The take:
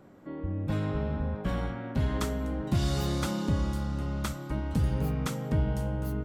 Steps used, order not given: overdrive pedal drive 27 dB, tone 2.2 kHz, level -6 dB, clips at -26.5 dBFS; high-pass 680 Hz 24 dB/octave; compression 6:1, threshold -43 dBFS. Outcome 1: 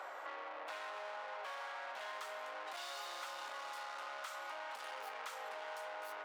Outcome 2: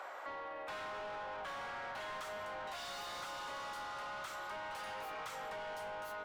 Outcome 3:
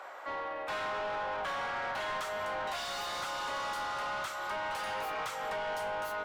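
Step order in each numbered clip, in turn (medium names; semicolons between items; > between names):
overdrive pedal > high-pass > compression; high-pass > overdrive pedal > compression; high-pass > compression > overdrive pedal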